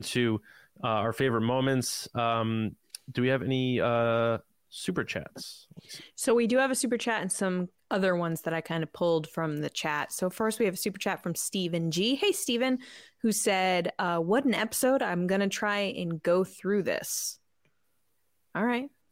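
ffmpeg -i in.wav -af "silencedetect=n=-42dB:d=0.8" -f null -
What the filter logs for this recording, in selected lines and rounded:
silence_start: 17.34
silence_end: 18.55 | silence_duration: 1.21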